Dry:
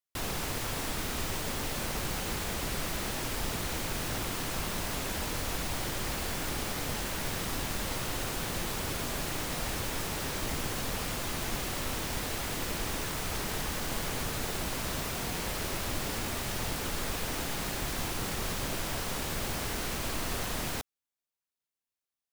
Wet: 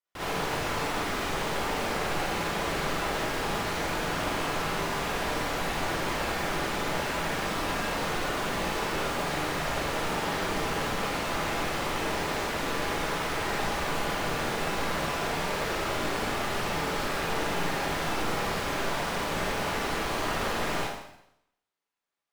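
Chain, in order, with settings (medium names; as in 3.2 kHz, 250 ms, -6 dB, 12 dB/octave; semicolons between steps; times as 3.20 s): overdrive pedal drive 14 dB, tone 1.2 kHz, clips at -19 dBFS; Schroeder reverb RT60 0.78 s, DRR -8.5 dB; trim -4 dB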